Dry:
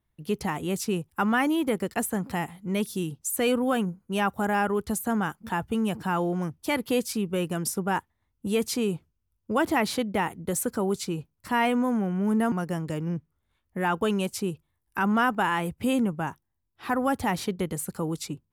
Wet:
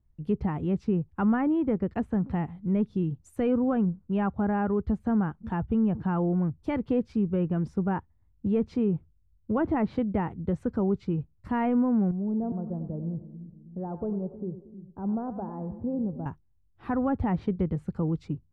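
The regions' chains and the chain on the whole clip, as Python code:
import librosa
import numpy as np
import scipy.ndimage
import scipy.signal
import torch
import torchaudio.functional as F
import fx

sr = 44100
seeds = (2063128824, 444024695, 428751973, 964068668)

y = fx.chain(x, sr, fx.ladder_lowpass(hz=840.0, resonance_pct=35),
    fx.echo_split(split_hz=320.0, low_ms=316, high_ms=96, feedback_pct=52, wet_db=-11.5), at=(12.11, 16.26))
y = fx.riaa(y, sr, side='playback')
y = fx.env_lowpass_down(y, sr, base_hz=2000.0, full_db=-16.0)
y = fx.high_shelf(y, sr, hz=2600.0, db=-8.5)
y = F.gain(torch.from_numpy(y), -5.0).numpy()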